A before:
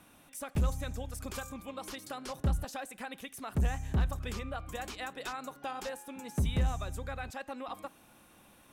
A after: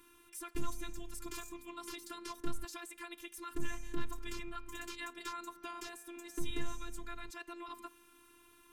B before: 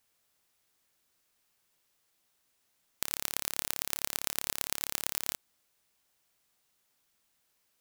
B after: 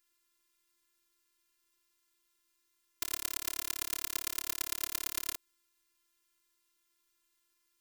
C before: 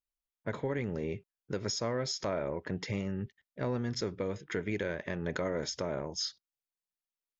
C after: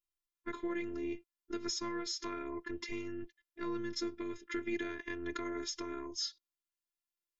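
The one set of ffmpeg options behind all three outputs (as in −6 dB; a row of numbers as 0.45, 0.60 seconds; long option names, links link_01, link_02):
-af "asuperstop=centerf=670:order=8:qfactor=2.4,afftfilt=real='hypot(re,im)*cos(PI*b)':imag='0':win_size=512:overlap=0.75,volume=1dB"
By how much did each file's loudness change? −8.5, −2.0, −4.5 LU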